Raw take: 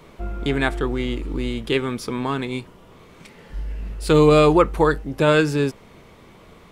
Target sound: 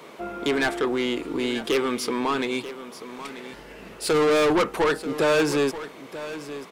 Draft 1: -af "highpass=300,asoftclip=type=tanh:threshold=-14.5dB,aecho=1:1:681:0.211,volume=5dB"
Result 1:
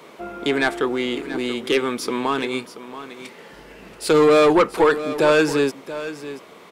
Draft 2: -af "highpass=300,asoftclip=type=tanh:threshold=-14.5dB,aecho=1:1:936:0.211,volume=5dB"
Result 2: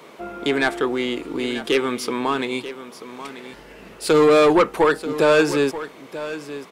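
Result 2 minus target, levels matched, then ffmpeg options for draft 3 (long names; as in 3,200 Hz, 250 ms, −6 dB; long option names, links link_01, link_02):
soft clipping: distortion −6 dB
-af "highpass=300,asoftclip=type=tanh:threshold=-22.5dB,aecho=1:1:936:0.211,volume=5dB"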